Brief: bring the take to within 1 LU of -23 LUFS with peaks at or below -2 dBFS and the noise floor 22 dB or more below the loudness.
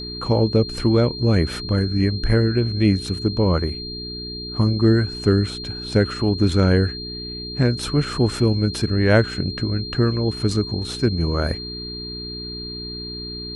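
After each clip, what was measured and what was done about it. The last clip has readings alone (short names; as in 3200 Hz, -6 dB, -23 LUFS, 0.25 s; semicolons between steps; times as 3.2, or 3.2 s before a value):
hum 60 Hz; harmonics up to 420 Hz; hum level -34 dBFS; steady tone 4200 Hz; tone level -31 dBFS; loudness -21.0 LUFS; peak -4.5 dBFS; loudness target -23.0 LUFS
-> de-hum 60 Hz, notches 7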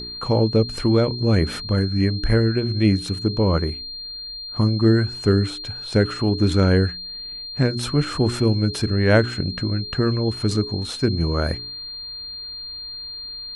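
hum none; steady tone 4200 Hz; tone level -31 dBFS
-> notch 4200 Hz, Q 30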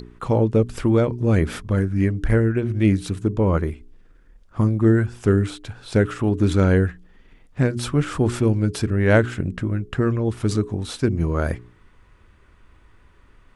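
steady tone none; loudness -21.0 LUFS; peak -4.5 dBFS; loudness target -23.0 LUFS
-> gain -2 dB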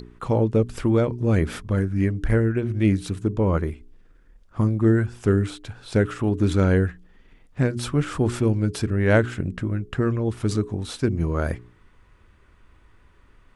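loudness -23.0 LUFS; peak -6.5 dBFS; noise floor -55 dBFS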